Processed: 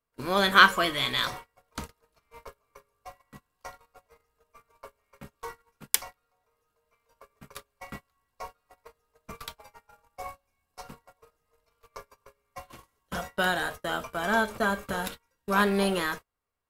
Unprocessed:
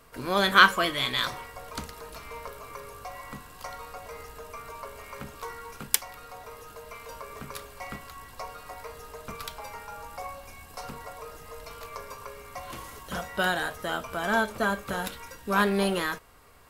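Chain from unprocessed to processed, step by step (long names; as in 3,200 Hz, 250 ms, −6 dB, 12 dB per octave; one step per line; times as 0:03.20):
noise gate −37 dBFS, range −31 dB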